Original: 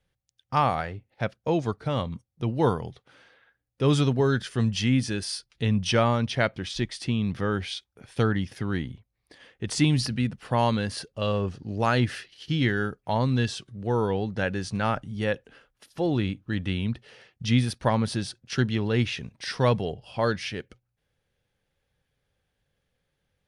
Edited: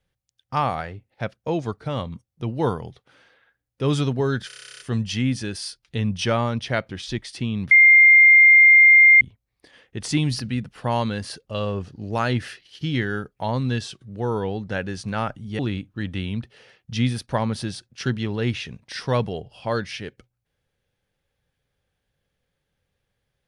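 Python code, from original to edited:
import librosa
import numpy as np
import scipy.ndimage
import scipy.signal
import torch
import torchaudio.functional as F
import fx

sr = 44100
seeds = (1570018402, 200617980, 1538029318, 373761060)

y = fx.edit(x, sr, fx.stutter(start_s=4.47, slice_s=0.03, count=12),
    fx.bleep(start_s=7.38, length_s=1.5, hz=2110.0, db=-8.0),
    fx.cut(start_s=15.26, length_s=0.85), tone=tone)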